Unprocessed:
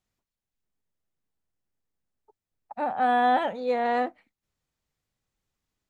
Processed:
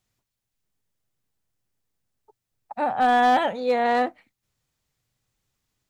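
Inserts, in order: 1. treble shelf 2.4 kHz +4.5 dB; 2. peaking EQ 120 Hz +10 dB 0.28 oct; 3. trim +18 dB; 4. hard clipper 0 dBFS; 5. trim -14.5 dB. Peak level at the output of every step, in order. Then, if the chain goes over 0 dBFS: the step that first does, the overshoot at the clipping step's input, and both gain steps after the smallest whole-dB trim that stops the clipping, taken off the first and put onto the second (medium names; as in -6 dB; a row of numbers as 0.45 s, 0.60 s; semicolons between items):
-14.0 dBFS, -14.0 dBFS, +4.0 dBFS, 0.0 dBFS, -14.5 dBFS; step 3, 4.0 dB; step 3 +14 dB, step 5 -10.5 dB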